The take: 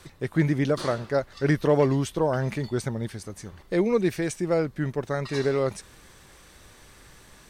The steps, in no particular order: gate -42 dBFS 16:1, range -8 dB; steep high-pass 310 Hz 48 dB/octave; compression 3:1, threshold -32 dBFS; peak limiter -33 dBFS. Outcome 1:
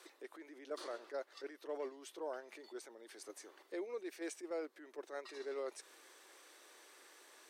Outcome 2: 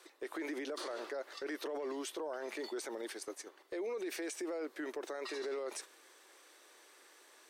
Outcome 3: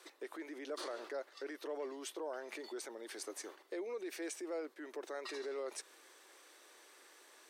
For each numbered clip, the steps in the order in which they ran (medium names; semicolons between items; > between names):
compression > peak limiter > steep high-pass > gate; steep high-pass > gate > peak limiter > compression; compression > gate > peak limiter > steep high-pass